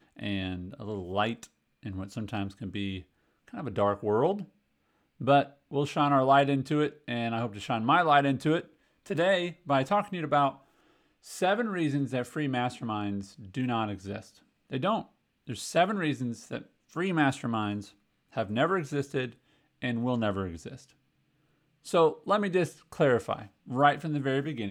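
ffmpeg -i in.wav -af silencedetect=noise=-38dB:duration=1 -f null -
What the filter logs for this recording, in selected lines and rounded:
silence_start: 20.76
silence_end: 21.87 | silence_duration: 1.11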